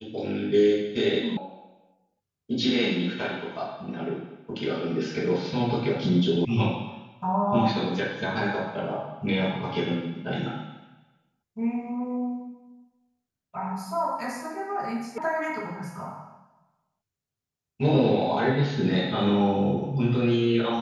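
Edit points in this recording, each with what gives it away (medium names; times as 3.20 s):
1.37 s: sound stops dead
6.45 s: sound stops dead
15.18 s: sound stops dead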